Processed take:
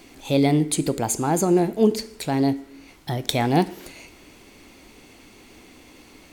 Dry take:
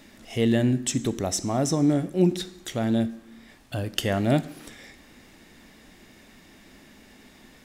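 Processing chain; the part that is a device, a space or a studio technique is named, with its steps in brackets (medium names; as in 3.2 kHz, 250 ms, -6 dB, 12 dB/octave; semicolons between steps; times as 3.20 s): nightcore (tape speed +21%); trim +3 dB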